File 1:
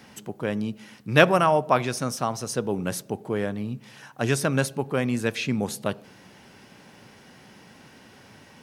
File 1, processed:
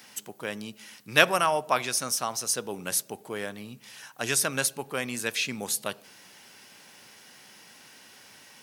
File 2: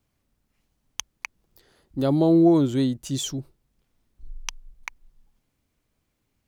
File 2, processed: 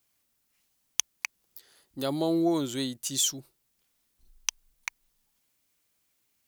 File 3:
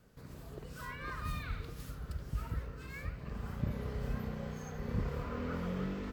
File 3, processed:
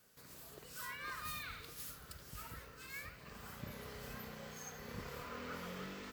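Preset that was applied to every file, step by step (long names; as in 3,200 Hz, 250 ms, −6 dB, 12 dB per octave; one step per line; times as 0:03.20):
spectral tilt +3.5 dB per octave
level −3.5 dB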